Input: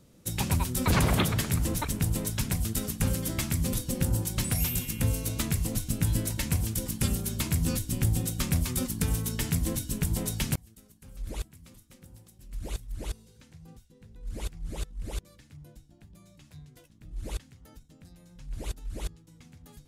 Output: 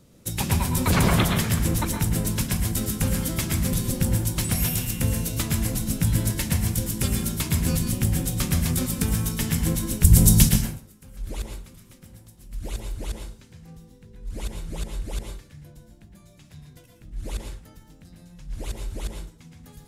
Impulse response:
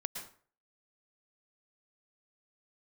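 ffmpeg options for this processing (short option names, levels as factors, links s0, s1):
-filter_complex "[0:a]asettb=1/sr,asplit=3[s0][s1][s2];[s0]atrim=end=10.044[s3];[s1]atrim=start=10.04:end=10.49,asetpts=PTS-STARTPTS,afade=t=in:d=0.004:c=qsin,afade=t=out:st=0.446:d=0.004:c=qsin,bass=f=250:g=13,treble=f=4000:g=12[s4];[s2]atrim=start=10.486[s5];[s3][s4]acrossfade=d=0.004:c1=hsin:c2=qsin[s6];[s6][s5]acrossfade=d=0.004:c1=qsin:c2=hsin[s7];[1:a]atrim=start_sample=2205[s8];[s7][s8]afir=irnorm=-1:irlink=0,volume=1.68"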